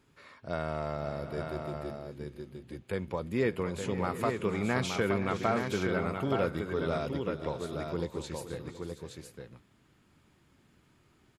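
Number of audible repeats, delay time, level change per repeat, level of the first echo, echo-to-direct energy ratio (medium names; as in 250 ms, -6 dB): 5, 459 ms, no regular repeats, -18.5 dB, -4.0 dB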